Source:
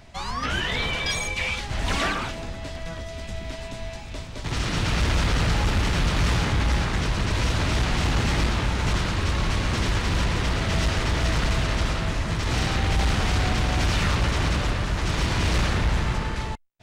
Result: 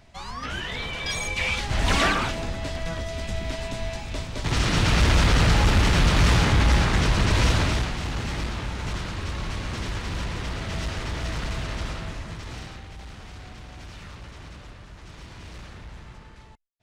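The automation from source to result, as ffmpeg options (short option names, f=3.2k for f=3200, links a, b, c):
-af "volume=3.5dB,afade=t=in:st=0.93:d=0.83:silence=0.354813,afade=t=out:st=7.49:d=0.45:silence=0.316228,afade=t=out:st=11.91:d=0.96:silence=0.237137"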